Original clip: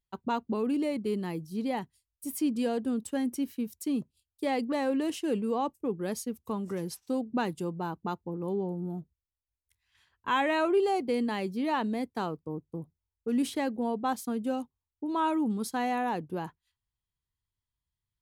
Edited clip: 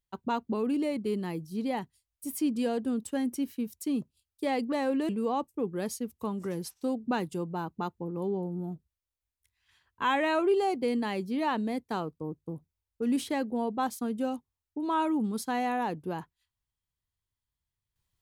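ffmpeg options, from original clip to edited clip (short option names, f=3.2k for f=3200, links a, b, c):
-filter_complex "[0:a]asplit=2[a][b];[a]atrim=end=5.092[c];[b]atrim=start=5.348[d];[c][d]acrossfade=d=0.004:c1=hsin:c2=hsin"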